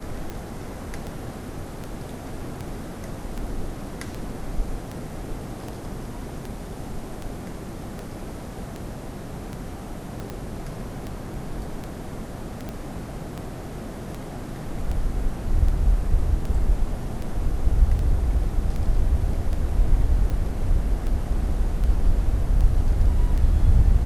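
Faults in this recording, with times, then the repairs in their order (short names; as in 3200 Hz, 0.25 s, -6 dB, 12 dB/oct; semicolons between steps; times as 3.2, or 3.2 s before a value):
tick 78 rpm -19 dBFS
10.2 pop -21 dBFS
12.69 pop -19 dBFS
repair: de-click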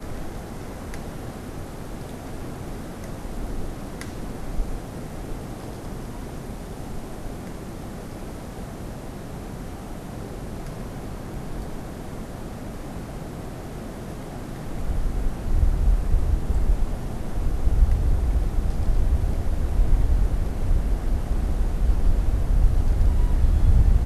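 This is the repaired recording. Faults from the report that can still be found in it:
10.2 pop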